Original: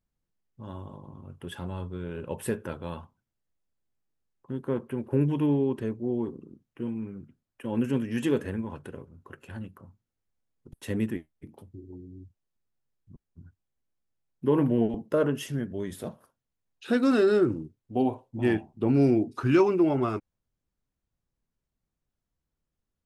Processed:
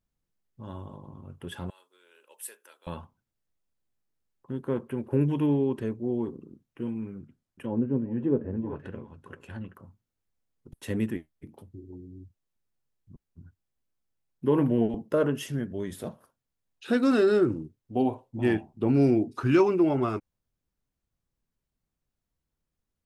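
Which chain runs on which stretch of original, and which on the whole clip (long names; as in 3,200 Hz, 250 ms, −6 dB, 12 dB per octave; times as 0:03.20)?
0:01.70–0:02.87: high-pass filter 320 Hz 24 dB per octave + first difference
0:07.19–0:09.75: single-tap delay 384 ms −13.5 dB + treble cut that deepens with the level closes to 680 Hz, closed at −26.5 dBFS
whole clip: no processing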